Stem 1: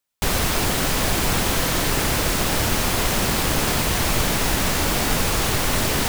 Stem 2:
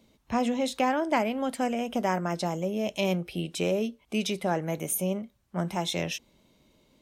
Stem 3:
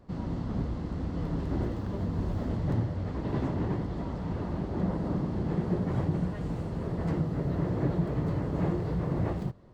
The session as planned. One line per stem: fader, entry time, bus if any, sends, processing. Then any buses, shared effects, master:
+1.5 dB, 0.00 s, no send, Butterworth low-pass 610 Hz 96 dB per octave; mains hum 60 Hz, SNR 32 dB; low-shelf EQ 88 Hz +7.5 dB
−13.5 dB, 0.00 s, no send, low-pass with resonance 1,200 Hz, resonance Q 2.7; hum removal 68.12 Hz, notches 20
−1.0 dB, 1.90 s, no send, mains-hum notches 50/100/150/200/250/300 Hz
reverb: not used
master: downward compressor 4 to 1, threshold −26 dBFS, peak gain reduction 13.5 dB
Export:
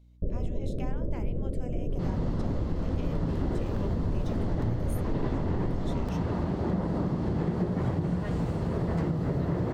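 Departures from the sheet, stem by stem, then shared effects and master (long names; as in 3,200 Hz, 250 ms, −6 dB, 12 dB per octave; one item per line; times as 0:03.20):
stem 1 +1.5 dB → −5.0 dB
stem 2: missing low-pass with resonance 1,200 Hz, resonance Q 2.7
stem 3 −1.0 dB → +9.0 dB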